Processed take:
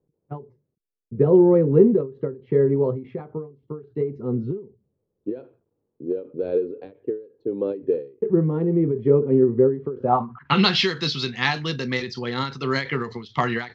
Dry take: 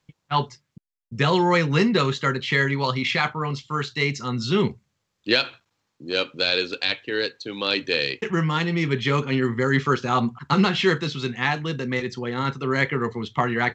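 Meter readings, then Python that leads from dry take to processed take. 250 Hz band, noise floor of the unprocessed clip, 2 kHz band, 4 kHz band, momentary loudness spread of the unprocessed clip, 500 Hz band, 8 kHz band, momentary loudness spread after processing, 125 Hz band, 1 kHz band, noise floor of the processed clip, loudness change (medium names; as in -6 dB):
+2.0 dB, -77 dBFS, -6.5 dB, -3.0 dB, 8 LU, +5.0 dB, no reading, 17 LU, -1.0 dB, -3.0 dB, -78 dBFS, +1.5 dB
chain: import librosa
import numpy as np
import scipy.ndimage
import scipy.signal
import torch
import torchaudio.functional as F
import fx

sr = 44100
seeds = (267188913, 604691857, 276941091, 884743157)

y = fx.filter_sweep_lowpass(x, sr, from_hz=430.0, to_hz=4900.0, start_s=9.96, end_s=10.71, q=3.8)
y = fx.end_taper(y, sr, db_per_s=150.0)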